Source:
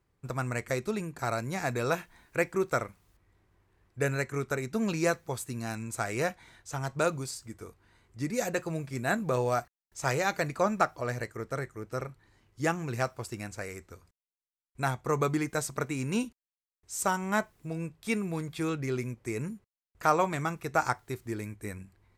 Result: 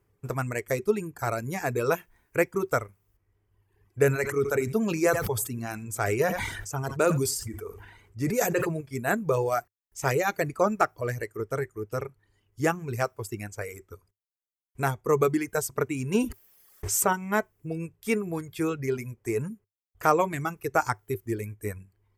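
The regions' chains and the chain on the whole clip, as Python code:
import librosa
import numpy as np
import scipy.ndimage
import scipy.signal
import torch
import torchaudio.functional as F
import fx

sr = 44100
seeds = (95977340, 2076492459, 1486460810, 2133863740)

y = fx.chain(x, sr, fx.echo_single(ms=86, db=-16.5),
    fx.sustainer(db_per_s=31.0), at=(4.01, 8.81))
y = fx.chain(y, sr, fx.high_shelf(hz=4900.0, db=-3.5),
    fx.env_flatten(amount_pct=70), at=(16.14, 17.13))
y = fx.notch(y, sr, hz=380.0, q=12.0)
y = fx.dereverb_blind(y, sr, rt60_s=1.3)
y = fx.graphic_eq_31(y, sr, hz=(100, 400, 4000, 12500), db=(8, 11, -8, 9))
y = y * 10.0 ** (2.5 / 20.0)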